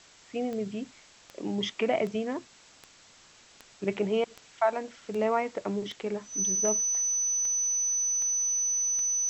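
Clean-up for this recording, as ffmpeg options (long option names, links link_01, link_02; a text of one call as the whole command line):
ffmpeg -i in.wav -af "adeclick=threshold=4,bandreject=frequency=6000:width=30,afwtdn=0.0025" out.wav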